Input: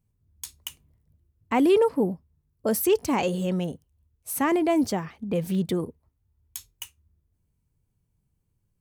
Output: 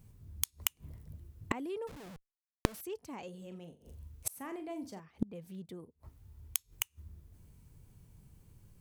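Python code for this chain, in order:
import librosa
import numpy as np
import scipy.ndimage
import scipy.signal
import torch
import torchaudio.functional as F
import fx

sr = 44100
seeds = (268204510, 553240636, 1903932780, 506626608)

y = fx.schmitt(x, sr, flips_db=-43.5, at=(1.87, 2.81))
y = fx.room_flutter(y, sr, wall_m=7.1, rt60_s=0.29, at=(3.38, 5.0))
y = fx.gate_flip(y, sr, shuts_db=-32.0, range_db=-35)
y = F.gain(torch.from_numpy(y), 14.5).numpy()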